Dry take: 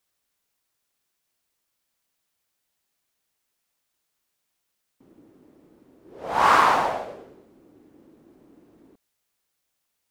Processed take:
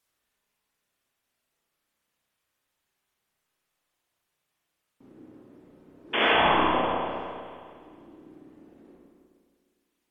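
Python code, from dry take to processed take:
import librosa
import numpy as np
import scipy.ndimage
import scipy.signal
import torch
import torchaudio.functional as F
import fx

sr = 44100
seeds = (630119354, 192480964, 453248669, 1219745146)

y = np.minimum(x, 2.0 * 10.0 ** (-10.5 / 20.0) - x)
y = fx.env_lowpass_down(y, sr, base_hz=550.0, full_db=-22.5)
y = fx.dereverb_blind(y, sr, rt60_s=1.9)
y = fx.spec_paint(y, sr, seeds[0], shape='noise', start_s=6.13, length_s=0.21, low_hz=200.0, high_hz=3500.0, level_db=-26.0)
y = fx.rev_spring(y, sr, rt60_s=2.1, pass_ms=(32, 51), chirp_ms=65, drr_db=-5.0)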